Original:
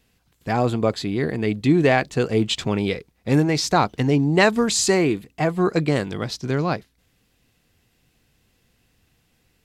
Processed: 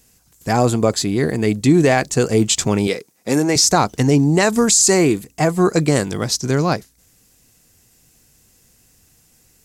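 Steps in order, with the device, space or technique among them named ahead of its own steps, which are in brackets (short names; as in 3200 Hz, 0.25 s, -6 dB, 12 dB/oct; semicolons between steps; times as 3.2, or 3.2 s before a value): over-bright horn tweeter (resonant high shelf 4800 Hz +10.5 dB, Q 1.5; limiter -9.5 dBFS, peak gain reduction 11 dB); 2.87–3.56 HPF 230 Hz 12 dB/oct; gain +5 dB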